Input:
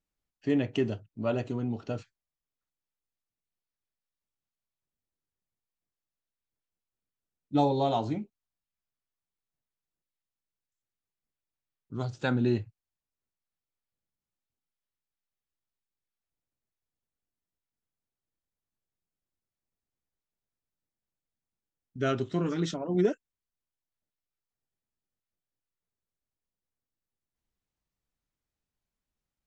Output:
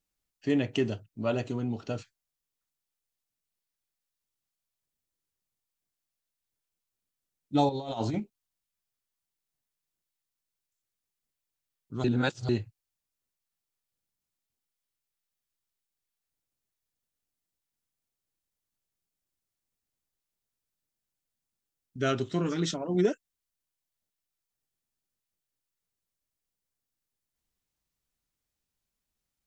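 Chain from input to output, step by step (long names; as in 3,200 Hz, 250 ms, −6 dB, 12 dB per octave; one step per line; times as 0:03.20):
high-shelf EQ 3,100 Hz +7.5 dB
0:07.69–0:08.20: compressor whose output falls as the input rises −31 dBFS, ratio −0.5
0:12.04–0:12.49: reverse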